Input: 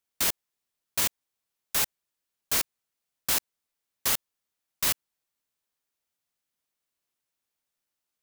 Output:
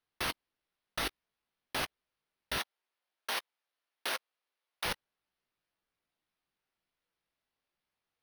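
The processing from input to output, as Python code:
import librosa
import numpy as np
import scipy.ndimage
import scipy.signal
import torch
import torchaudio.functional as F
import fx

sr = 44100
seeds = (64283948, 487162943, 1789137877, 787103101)

y = np.repeat(x[::6], 6)[:len(x)]
y = 10.0 ** (-26.5 / 20.0) * (np.abs((y / 10.0 ** (-26.5 / 20.0) + 3.0) % 4.0 - 2.0) - 1.0)
y = fx.chorus_voices(y, sr, voices=6, hz=1.4, base_ms=18, depth_ms=3.1, mix_pct=35)
y = fx.level_steps(y, sr, step_db=19)
y = fx.highpass(y, sr, hz=450.0, slope=12, at=(2.58, 4.85))
y = y * 10.0 ** (5.0 / 20.0)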